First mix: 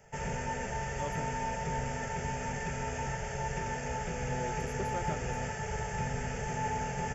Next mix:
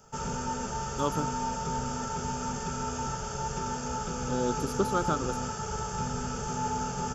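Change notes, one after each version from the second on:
speech +8.5 dB; master: add EQ curve 150 Hz 0 dB, 260 Hz +8 dB, 680 Hz -4 dB, 1300 Hz +13 dB, 1900 Hz -14 dB, 3900 Hz +10 dB, 8100 Hz +5 dB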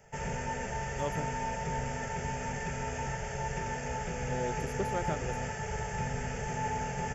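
speech -4.0 dB; master: add EQ curve 150 Hz 0 dB, 260 Hz -8 dB, 680 Hz +4 dB, 1300 Hz -13 dB, 1900 Hz +14 dB, 3900 Hz -10 dB, 8100 Hz -5 dB

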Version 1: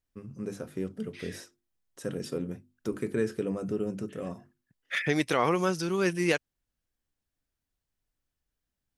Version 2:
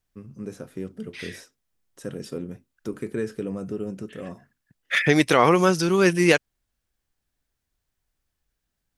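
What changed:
first voice: remove notches 50/100/150/200/250/300/350 Hz; second voice +8.5 dB

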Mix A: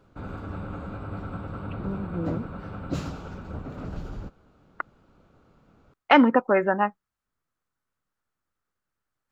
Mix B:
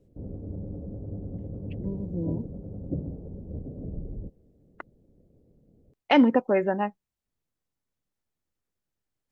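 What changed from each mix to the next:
background: add Chebyshev low-pass 520 Hz, order 3; master: add bell 1300 Hz -13 dB 0.97 oct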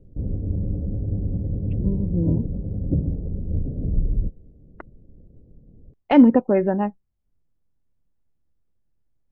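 master: add tilt -3.5 dB/oct

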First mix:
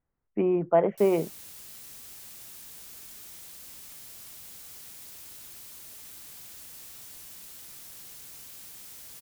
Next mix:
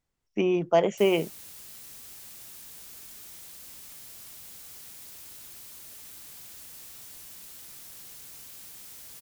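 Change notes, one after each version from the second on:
speech: remove LPF 1800 Hz 24 dB/oct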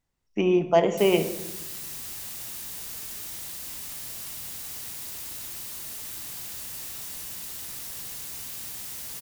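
background +7.0 dB; reverb: on, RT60 0.95 s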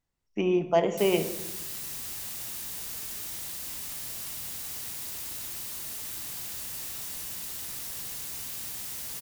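speech -3.5 dB

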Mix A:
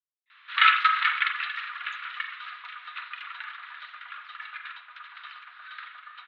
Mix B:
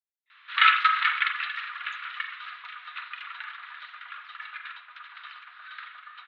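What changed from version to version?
second sound: send off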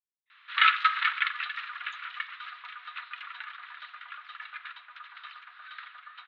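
speech -5.5 dB; first sound: send -11.0 dB

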